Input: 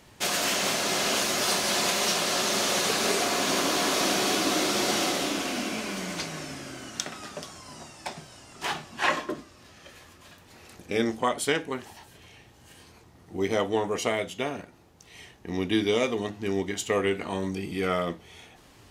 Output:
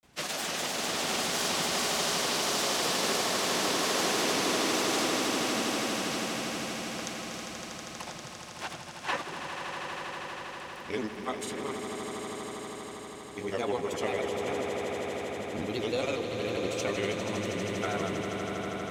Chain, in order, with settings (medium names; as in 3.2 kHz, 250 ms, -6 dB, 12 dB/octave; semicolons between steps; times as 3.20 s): granulator, pitch spread up and down by 3 st; echo with a slow build-up 80 ms, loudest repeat 8, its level -9.5 dB; trim -5.5 dB